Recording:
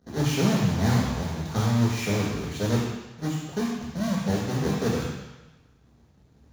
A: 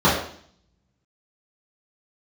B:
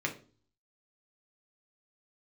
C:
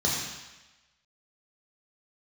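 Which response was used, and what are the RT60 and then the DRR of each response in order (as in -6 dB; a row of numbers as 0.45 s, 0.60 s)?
C; 0.55 s, 0.40 s, 1.1 s; -11.0 dB, 0.5 dB, -4.0 dB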